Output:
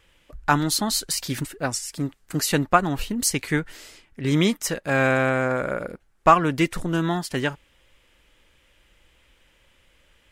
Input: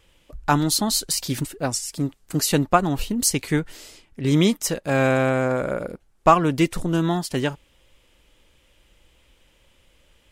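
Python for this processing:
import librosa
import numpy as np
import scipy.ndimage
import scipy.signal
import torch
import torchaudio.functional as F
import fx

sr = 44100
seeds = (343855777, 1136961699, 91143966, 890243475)

y = fx.peak_eq(x, sr, hz=1700.0, db=6.5, octaves=1.2)
y = y * librosa.db_to_amplitude(-2.5)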